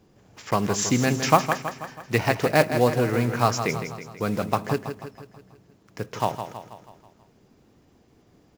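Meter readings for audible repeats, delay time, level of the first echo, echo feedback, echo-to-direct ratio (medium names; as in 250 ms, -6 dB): 5, 162 ms, -9.0 dB, 53%, -7.5 dB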